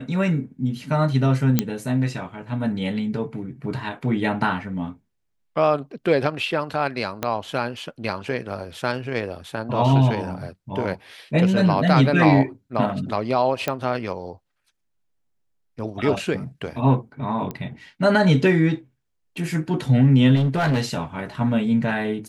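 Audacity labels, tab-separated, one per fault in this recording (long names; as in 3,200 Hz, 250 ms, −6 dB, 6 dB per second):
1.590000	1.590000	click −4 dBFS
7.230000	7.230000	click −9 dBFS
13.680000	13.680000	click −9 dBFS
17.510000	17.510000	click −17 dBFS
20.350000	20.940000	clipping −16.5 dBFS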